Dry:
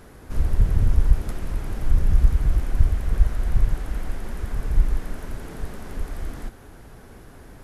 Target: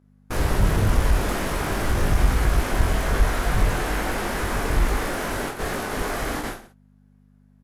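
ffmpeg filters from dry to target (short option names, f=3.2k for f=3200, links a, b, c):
-filter_complex "[0:a]agate=range=-44dB:threshold=-33dB:ratio=16:detection=peak,crystalizer=i=3.5:c=0,aeval=exprs='val(0)+0.000794*(sin(2*PI*50*n/s)+sin(2*PI*2*50*n/s)/2+sin(2*PI*3*50*n/s)/3+sin(2*PI*4*50*n/s)/4+sin(2*PI*5*50*n/s)/5)':c=same,asplit=2[a][b];[b]highpass=f=720:p=1,volume=25dB,asoftclip=type=tanh:threshold=-12dB[c];[a][c]amix=inputs=2:normalize=0,lowpass=f=1.1k:p=1,volume=-6dB,asplit=2[d][e];[e]aecho=0:1:20|46|79.8|123.7|180.9:0.631|0.398|0.251|0.158|0.1[f];[d][f]amix=inputs=2:normalize=0"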